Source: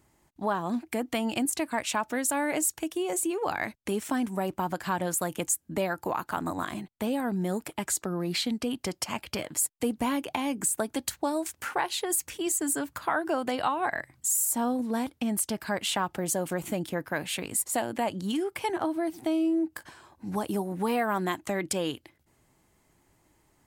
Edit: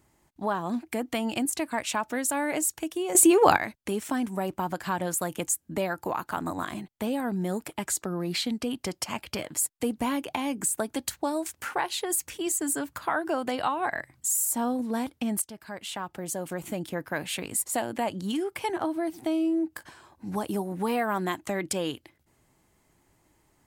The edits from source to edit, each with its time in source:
3.15–3.57 gain +11.5 dB
15.42–17.21 fade in, from -13 dB

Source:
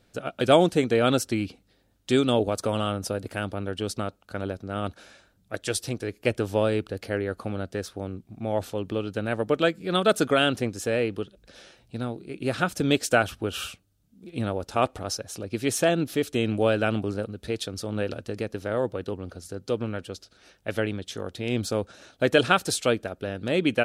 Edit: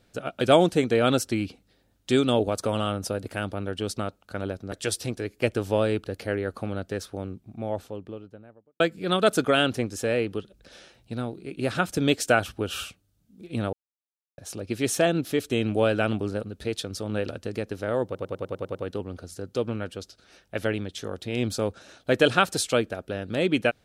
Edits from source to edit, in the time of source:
4.72–5.55 cut
7.92–9.63 studio fade out
14.56–15.21 mute
18.88 stutter 0.10 s, 8 plays

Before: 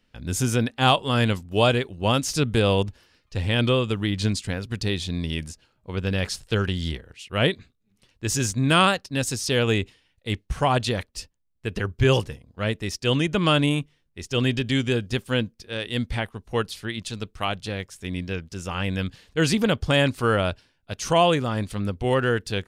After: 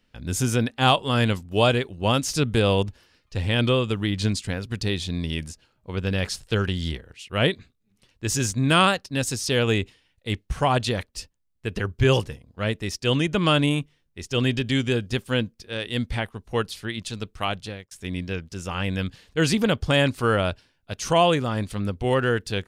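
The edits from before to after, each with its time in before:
17.58–17.91 fade out

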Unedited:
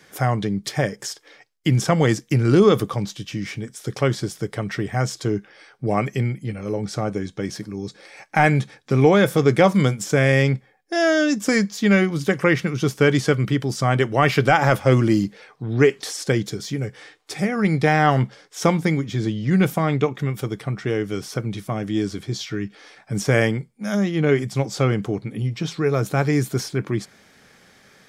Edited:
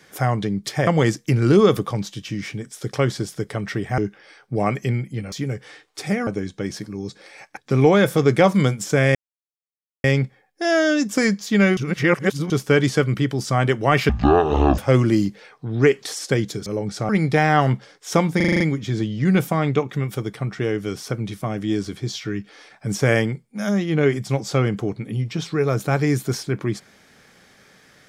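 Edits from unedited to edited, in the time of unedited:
0.87–1.9 cut
5.01–5.29 cut
6.63–7.06 swap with 16.64–17.59
8.36–8.77 cut
10.35 insert silence 0.89 s
12.08–12.81 reverse
14.4–14.76 speed 52%
18.86 stutter 0.04 s, 7 plays

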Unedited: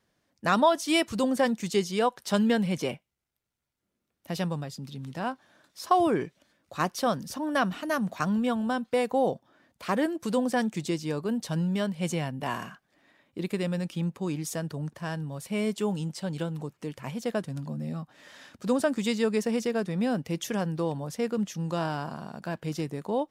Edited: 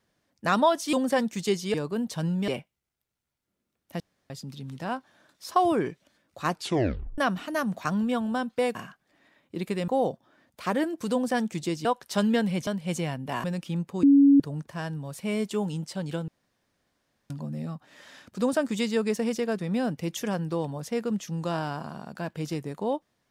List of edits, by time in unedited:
0.93–1.2 cut
2.01–2.83 swap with 11.07–11.81
4.35–4.65 room tone
6.84 tape stop 0.69 s
12.58–13.71 move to 9.1
14.3–14.67 bleep 280 Hz -13 dBFS
16.55–17.57 room tone

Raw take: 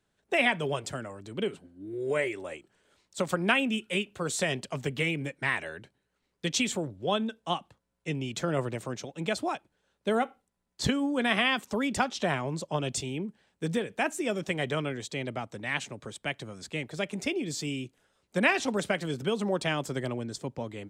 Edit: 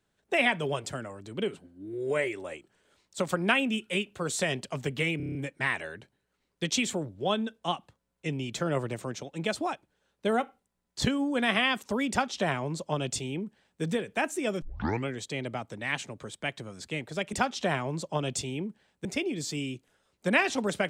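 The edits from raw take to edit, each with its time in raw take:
5.17 stutter 0.03 s, 7 plays
11.92–13.64 copy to 17.15
14.44 tape start 0.45 s

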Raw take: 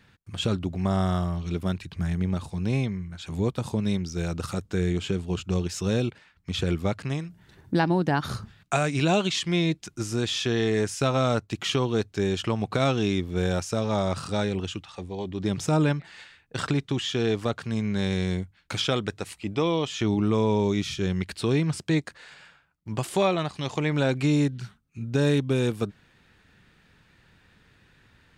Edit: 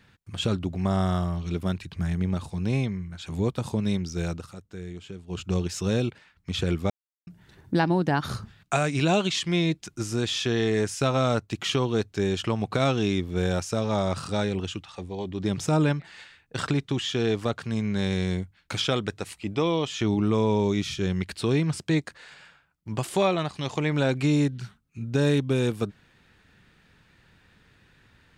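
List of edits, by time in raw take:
4.3–5.42 dip -12.5 dB, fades 0.15 s
6.9–7.27 mute

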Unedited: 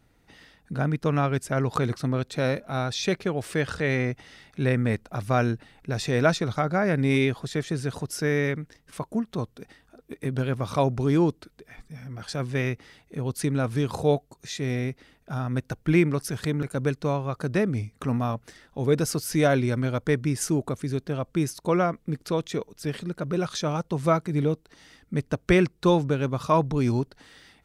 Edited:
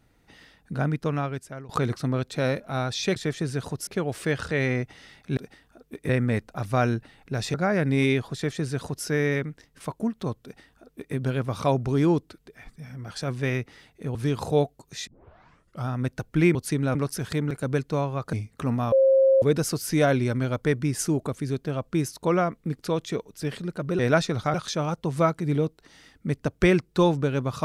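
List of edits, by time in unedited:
0.87–1.69 fade out, to -22 dB
6.11–6.66 move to 23.41
7.46–8.17 copy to 3.16
9.55–10.27 copy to 4.66
13.27–13.67 move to 16.07
14.59 tape start 0.80 s
17.45–17.75 cut
18.34–18.84 bleep 535 Hz -14.5 dBFS

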